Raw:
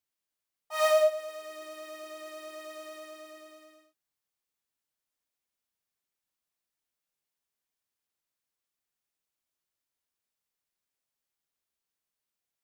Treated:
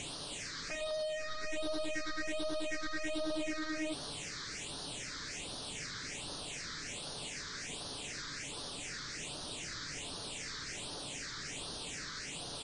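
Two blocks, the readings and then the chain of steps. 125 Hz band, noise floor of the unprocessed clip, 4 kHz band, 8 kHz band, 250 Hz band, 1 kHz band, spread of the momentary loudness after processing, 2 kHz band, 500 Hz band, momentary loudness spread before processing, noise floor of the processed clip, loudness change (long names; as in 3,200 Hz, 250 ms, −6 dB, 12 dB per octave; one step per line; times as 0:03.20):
can't be measured, below −85 dBFS, +8.0 dB, +9.5 dB, +15.0 dB, −5.5 dB, 4 LU, +3.5 dB, −8.0 dB, 20 LU, −44 dBFS, −12.0 dB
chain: sign of each sample alone
comb filter 6.9 ms, depth 32%
brickwall limiter −41 dBFS, peak gain reduction 5 dB
all-pass phaser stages 6, 1.3 Hz, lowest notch 710–2,200 Hz
high-frequency loss of the air 54 metres
level +10 dB
MP3 40 kbit/s 22,050 Hz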